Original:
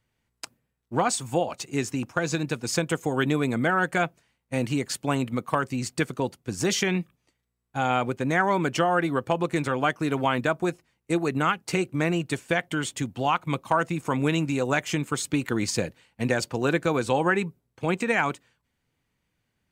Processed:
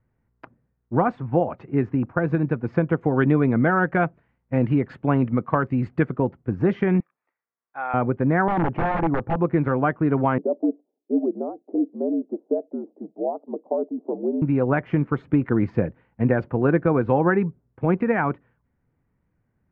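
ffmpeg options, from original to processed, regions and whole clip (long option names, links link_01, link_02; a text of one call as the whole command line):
ffmpeg -i in.wav -filter_complex "[0:a]asettb=1/sr,asplit=3[link_01][link_02][link_03];[link_01]atrim=end=3.014[link_04];[link_02]atrim=start=3.01:end=6.12,asetpts=PTS-STARTPTS,afade=type=in:duration=0.004:curve=qsin,afade=type=out:start_time=3.106:duration=0.004:curve=qsin,aemphasis=mode=production:type=75kf,bandreject=frequency=5600:width=7[link_05];[link_03]atrim=start=6.116[link_06];[link_04][link_05]acrossfade=duration=0.004:curve1=hsin:curve2=qsin[link_07];[link_07][link_06]acrossfade=duration=0.004:curve1=qsin:curve2=hsin,asettb=1/sr,asplit=3[link_08][link_09][link_10];[link_08]atrim=end=7.004[link_11];[link_09]atrim=start=7:end=7.94,asetpts=PTS-STARTPTS,afade=type=in:duration=0.004:curve=qsin,afade=type=out:start_time=0.936:duration=0.004:curve=qsin,highpass=1000,bandreject=frequency=3000:width=6.2[link_12];[link_10]atrim=start=7.936[link_13];[link_11][link_12]acrossfade=duration=0.004:curve1=hsin:curve2=qsin[link_14];[link_14][link_13]acrossfade=duration=0.004:curve1=qsin:curve2=hsin,asettb=1/sr,asplit=3[link_15][link_16][link_17];[link_15]atrim=end=8.484[link_18];[link_16]atrim=start=8.48:end=9.36,asetpts=PTS-STARTPTS,afade=type=in:duration=0.004:curve=qsin,afade=type=out:start_time=0.876:duration=0.004:curve=qsin,lowpass=frequency=1400:poles=1,aeval=exprs='(mod(10*val(0)+1,2)-1)/10':channel_layout=same,equalizer=frequency=830:width_type=o:width=0.27:gain=8[link_19];[link_17]atrim=start=9.356[link_20];[link_18][link_19]acrossfade=duration=0.004:curve1=hsin:curve2=qsin[link_21];[link_21][link_20]acrossfade=duration=0.004:curve1=qsin:curve2=hsin,asettb=1/sr,asplit=3[link_22][link_23][link_24];[link_22]atrim=end=10.384[link_25];[link_23]atrim=start=10.38:end=14.42,asetpts=PTS-STARTPTS,afade=type=in:duration=0.004:curve=qsin,afade=type=out:start_time=4.036:duration=0.004:curve=qsin,afreqshift=-66,asuperpass=centerf=430:order=8:qfactor=1[link_26];[link_24]atrim=start=14.416[link_27];[link_25][link_26]acrossfade=duration=0.004:curve1=hsin:curve2=qsin[link_28];[link_28][link_27]acrossfade=duration=0.004:curve1=qsin:curve2=hsin,lowpass=frequency=1800:width=0.5412,lowpass=frequency=1800:width=1.3066,lowshelf=frequency=490:gain=8" out.wav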